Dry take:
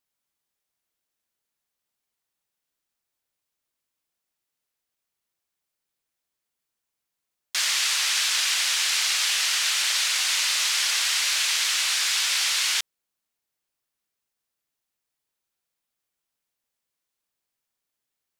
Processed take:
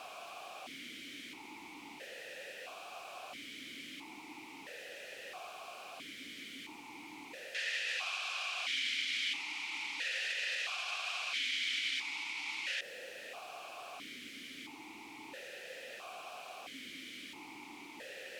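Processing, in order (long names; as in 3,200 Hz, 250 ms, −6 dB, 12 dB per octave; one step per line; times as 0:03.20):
converter with a step at zero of −28.5 dBFS
brickwall limiter −19.5 dBFS, peak gain reduction 9 dB
formant filter that steps through the vowels 1.5 Hz
level +6.5 dB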